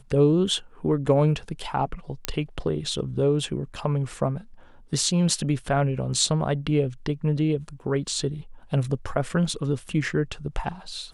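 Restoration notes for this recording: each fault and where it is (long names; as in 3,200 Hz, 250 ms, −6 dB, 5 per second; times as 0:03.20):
0:02.25: click −7 dBFS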